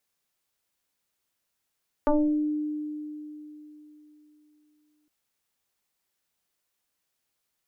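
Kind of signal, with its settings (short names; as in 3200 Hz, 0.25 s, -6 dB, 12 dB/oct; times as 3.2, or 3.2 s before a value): FM tone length 3.01 s, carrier 301 Hz, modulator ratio 0.97, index 2.7, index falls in 0.57 s exponential, decay 3.54 s, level -17.5 dB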